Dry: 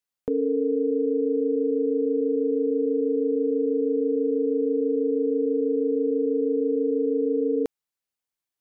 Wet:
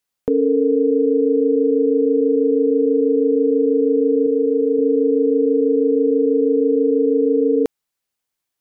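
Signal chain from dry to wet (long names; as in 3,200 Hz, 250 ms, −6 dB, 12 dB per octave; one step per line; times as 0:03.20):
0:04.26–0:04.79: bass and treble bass −6 dB, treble +6 dB
level +7.5 dB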